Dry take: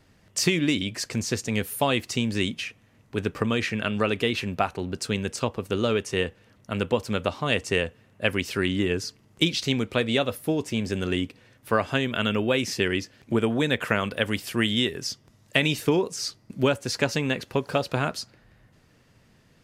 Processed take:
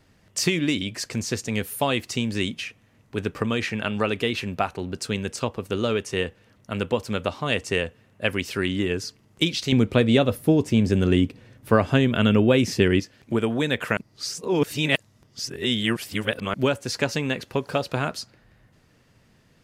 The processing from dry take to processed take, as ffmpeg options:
-filter_complex "[0:a]asettb=1/sr,asplit=3[a][b][c];[a]atrim=end=3.624[d];[b]atrim=start=3.62:end=4.06,asetpts=PTS-STARTPTS,afade=t=in:d=0.004:c=qsin,afade=t=out:st=0.436:d=0.004:c=qsin,equalizer=f=850:t=o:w=0.28:g=7[e];[c]atrim=start=4.056[f];[d][e]acrossfade=d=0.004:c1=hsin:c2=qsin[g];[g][f]acrossfade=d=0.004:c1=qsin:c2=hsin,asettb=1/sr,asplit=3[h][i][j];[h]atrim=end=9.724[k];[i]atrim=start=9.72:end=13,asetpts=PTS-STARTPTS,afade=t=in:d=0.004:c=qsin,afade=t=out:st=3.276:d=0.004:c=qsin,lowshelf=f=480:g=10[l];[j]atrim=start=12.996[m];[k][l]acrossfade=d=0.004:c1=hsin:c2=qsin[n];[n][m]acrossfade=d=0.004:c1=qsin:c2=hsin,asplit=3[o][p][q];[o]atrim=end=13.972[r];[p]atrim=start=13.968:end=16.542,asetpts=PTS-STARTPTS,areverse[s];[q]atrim=start=16.538[t];[r][s]acrossfade=d=0.004:c1=hsin:c2=hsin[u];[u][t]acrossfade=d=0.004:c1=hsin:c2=hsin"

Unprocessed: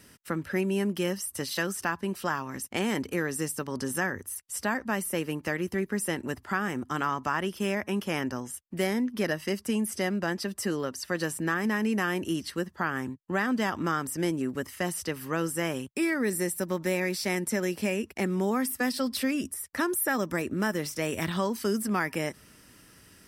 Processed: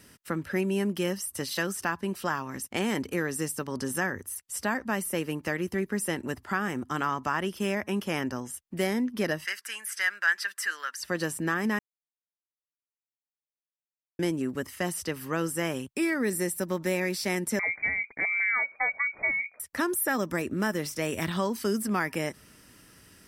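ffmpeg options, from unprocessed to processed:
-filter_complex "[0:a]asettb=1/sr,asplit=3[a][b][c];[a]atrim=end=9.454[d];[b]atrim=start=9.45:end=11,asetpts=PTS-STARTPTS,afade=t=in:d=0.004:c=qsin,afade=t=out:st=1.546:d=0.004:c=qsin,highpass=f=1.6k:t=q:w=4.2[e];[c]atrim=start=10.996[f];[d][e]acrossfade=d=0.004:c1=hsin:c2=qsin[g];[g][f]acrossfade=d=0.004:c1=qsin:c2=hsin,asettb=1/sr,asplit=3[h][i][j];[h]atrim=end=17.594[k];[i]atrim=start=17.59:end=19.6,asetpts=PTS-STARTPTS,afade=t=in:d=0.004:c=qsin,afade=t=out:st=2.006:d=0.004:c=qsin,lowpass=f=2.1k:t=q:w=0.5098,lowpass=f=2.1k:t=q:w=0.6013,lowpass=f=2.1k:t=q:w=0.9,lowpass=f=2.1k:t=q:w=2.563,afreqshift=-2500[l];[j]atrim=start=19.596[m];[k][l]acrossfade=d=0.004:c1=hsin:c2=qsin[n];[n][m]acrossfade=d=0.004:c1=qsin:c2=hsin,asplit=3[o][p][q];[o]atrim=end=11.79,asetpts=PTS-STARTPTS,afade=t=out:st=11.786:d=0.004:c=hsin[r];[p]atrim=start=11.79:end=14.19,asetpts=PTS-STARTPTS,volume=0[s];[q]atrim=start=14.19,asetpts=PTS-STARTPTS,afade=t=in:d=0.004:c=hsin[t];[r][s][t]concat=n=3:v=0:a=1"

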